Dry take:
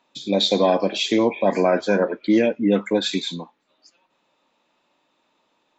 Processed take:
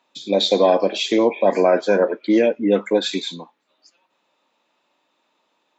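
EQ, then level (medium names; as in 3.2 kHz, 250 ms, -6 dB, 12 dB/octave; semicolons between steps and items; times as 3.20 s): high-pass 270 Hz 6 dB/octave; dynamic bell 470 Hz, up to +5 dB, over -31 dBFS, Q 0.88; 0.0 dB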